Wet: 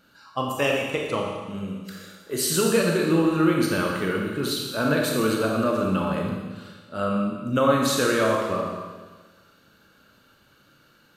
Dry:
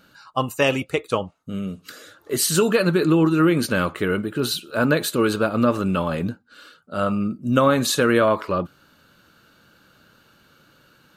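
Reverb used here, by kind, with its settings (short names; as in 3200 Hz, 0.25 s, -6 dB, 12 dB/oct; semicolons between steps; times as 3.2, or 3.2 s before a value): Schroeder reverb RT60 1.4 s, combs from 28 ms, DRR -0.5 dB; gain -5.5 dB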